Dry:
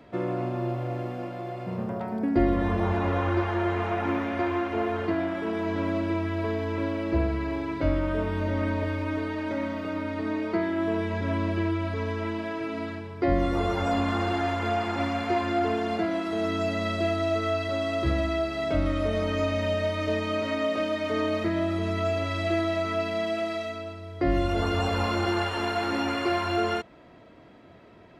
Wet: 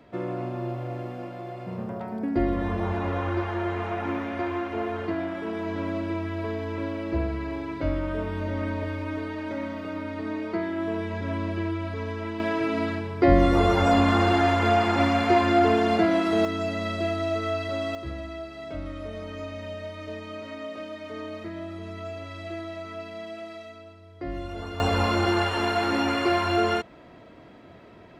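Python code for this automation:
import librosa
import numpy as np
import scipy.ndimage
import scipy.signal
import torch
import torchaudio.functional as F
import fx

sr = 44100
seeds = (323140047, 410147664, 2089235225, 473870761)

y = fx.gain(x, sr, db=fx.steps((0.0, -2.0), (12.4, 6.0), (16.45, -1.0), (17.95, -9.5), (24.8, 3.0)))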